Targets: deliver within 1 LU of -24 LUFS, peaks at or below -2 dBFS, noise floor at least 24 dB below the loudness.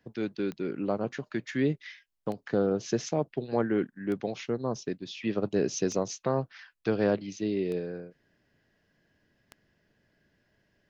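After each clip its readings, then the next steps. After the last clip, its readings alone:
clicks 6; loudness -31.0 LUFS; peak -14.0 dBFS; loudness target -24.0 LUFS
-> de-click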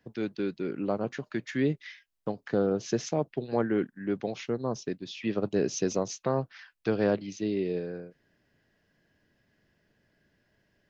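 clicks 0; loudness -31.0 LUFS; peak -14.0 dBFS; loudness target -24.0 LUFS
-> gain +7 dB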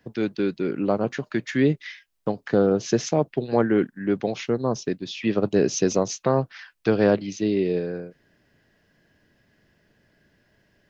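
loudness -24.0 LUFS; peak -7.0 dBFS; noise floor -68 dBFS

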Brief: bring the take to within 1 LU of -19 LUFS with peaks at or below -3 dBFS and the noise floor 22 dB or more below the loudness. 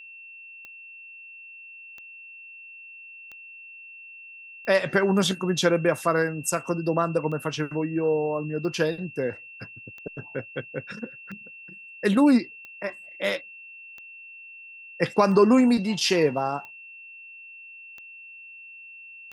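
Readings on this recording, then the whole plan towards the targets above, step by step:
clicks 15; steady tone 2700 Hz; tone level -42 dBFS; loudness -24.5 LUFS; peak -7.0 dBFS; loudness target -19.0 LUFS
-> de-click; notch 2700 Hz, Q 30; gain +5.5 dB; limiter -3 dBFS

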